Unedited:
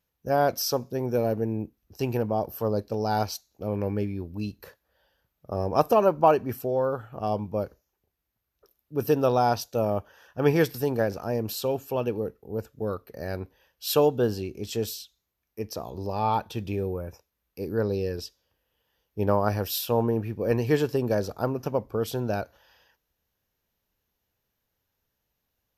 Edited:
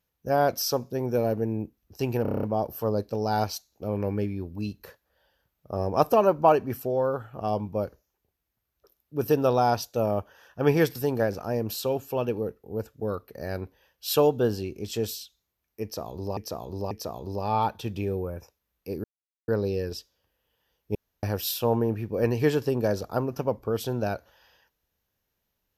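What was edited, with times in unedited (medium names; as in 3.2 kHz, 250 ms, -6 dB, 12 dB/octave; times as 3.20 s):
2.22 s: stutter 0.03 s, 8 plays
15.62–16.16 s: loop, 3 plays
17.75 s: insert silence 0.44 s
19.22–19.50 s: room tone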